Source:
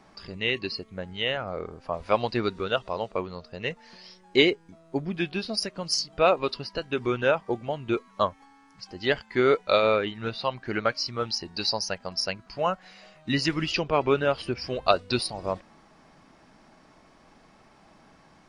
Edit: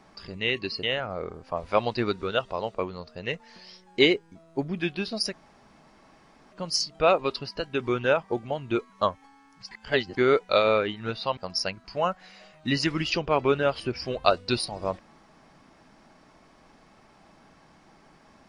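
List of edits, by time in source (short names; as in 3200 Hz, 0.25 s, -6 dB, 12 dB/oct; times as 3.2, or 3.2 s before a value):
0.83–1.2 cut
5.7 insert room tone 1.19 s
8.89–9.35 reverse
10.55–11.99 cut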